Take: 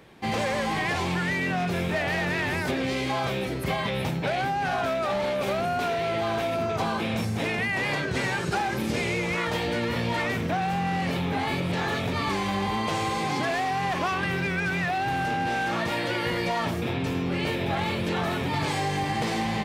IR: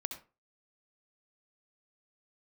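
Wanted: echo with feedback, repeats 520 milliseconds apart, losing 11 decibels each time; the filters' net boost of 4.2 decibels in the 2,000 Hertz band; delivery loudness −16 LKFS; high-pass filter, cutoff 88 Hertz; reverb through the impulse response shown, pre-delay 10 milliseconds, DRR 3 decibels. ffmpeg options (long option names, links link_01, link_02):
-filter_complex "[0:a]highpass=88,equalizer=frequency=2000:width_type=o:gain=5,aecho=1:1:520|1040|1560:0.282|0.0789|0.0221,asplit=2[link_01][link_02];[1:a]atrim=start_sample=2205,adelay=10[link_03];[link_02][link_03]afir=irnorm=-1:irlink=0,volume=-3dB[link_04];[link_01][link_04]amix=inputs=2:normalize=0,volume=7dB"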